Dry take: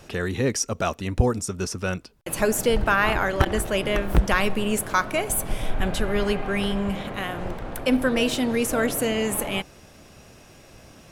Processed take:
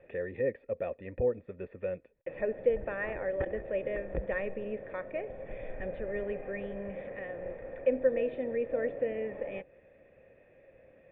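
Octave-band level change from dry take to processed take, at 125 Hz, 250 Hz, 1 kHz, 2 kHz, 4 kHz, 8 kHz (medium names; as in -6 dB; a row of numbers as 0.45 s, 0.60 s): -18.0 dB, -16.0 dB, -20.0 dB, -15.0 dB, under -30 dB, under -40 dB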